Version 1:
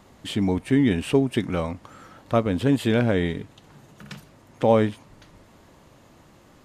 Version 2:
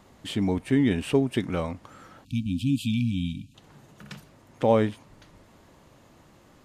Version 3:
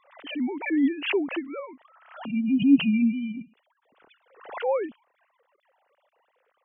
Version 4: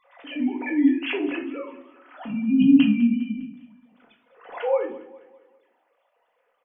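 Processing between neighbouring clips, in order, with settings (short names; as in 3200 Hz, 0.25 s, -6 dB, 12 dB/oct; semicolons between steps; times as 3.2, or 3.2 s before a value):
spectral delete 2.25–3.55, 280–2300 Hz; gain -2.5 dB
sine-wave speech; backwards sustainer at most 100 dB/s
feedback echo 0.202 s, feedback 46%, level -18 dB; shoebox room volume 380 m³, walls furnished, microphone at 1.9 m; gain -2.5 dB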